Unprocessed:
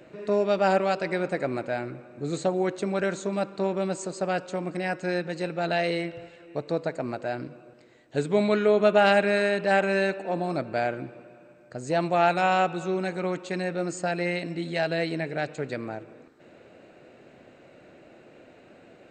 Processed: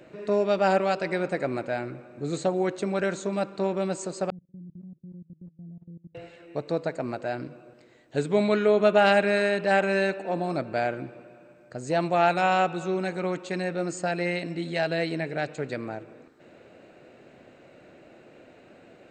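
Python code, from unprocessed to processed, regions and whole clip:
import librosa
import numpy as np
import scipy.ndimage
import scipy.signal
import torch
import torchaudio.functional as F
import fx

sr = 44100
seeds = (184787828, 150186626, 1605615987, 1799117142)

y = fx.chain(x, sr, fx.ladder_lowpass(hz=200.0, resonance_pct=35),
    fx.level_steps(step_db=21), at=(4.3, 6.15))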